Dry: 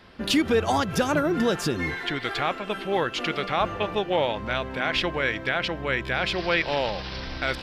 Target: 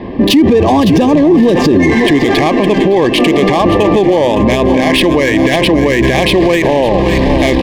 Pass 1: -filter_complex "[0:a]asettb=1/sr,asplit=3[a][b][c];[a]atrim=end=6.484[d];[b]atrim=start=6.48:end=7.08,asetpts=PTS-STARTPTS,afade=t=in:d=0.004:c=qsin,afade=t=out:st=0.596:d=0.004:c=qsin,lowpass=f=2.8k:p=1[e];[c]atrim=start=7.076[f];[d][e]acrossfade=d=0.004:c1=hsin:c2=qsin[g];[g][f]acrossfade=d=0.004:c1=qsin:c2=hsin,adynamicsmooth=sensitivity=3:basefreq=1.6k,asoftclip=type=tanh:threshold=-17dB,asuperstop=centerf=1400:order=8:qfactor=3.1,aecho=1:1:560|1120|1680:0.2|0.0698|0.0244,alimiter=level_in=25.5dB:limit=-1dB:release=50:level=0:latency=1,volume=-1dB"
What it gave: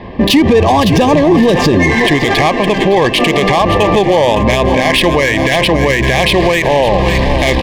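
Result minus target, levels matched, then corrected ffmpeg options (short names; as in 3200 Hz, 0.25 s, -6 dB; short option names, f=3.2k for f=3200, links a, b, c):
250 Hz band -3.0 dB
-filter_complex "[0:a]asettb=1/sr,asplit=3[a][b][c];[a]atrim=end=6.484[d];[b]atrim=start=6.48:end=7.08,asetpts=PTS-STARTPTS,afade=t=in:d=0.004:c=qsin,afade=t=out:st=0.596:d=0.004:c=qsin,lowpass=f=2.8k:p=1[e];[c]atrim=start=7.076[f];[d][e]acrossfade=d=0.004:c1=hsin:c2=qsin[g];[g][f]acrossfade=d=0.004:c1=qsin:c2=hsin,adynamicsmooth=sensitivity=3:basefreq=1.6k,asoftclip=type=tanh:threshold=-17dB,asuperstop=centerf=1400:order=8:qfactor=3.1,equalizer=f=300:t=o:w=1.2:g=10.5,aecho=1:1:560|1120|1680:0.2|0.0698|0.0244,alimiter=level_in=25.5dB:limit=-1dB:release=50:level=0:latency=1,volume=-1dB"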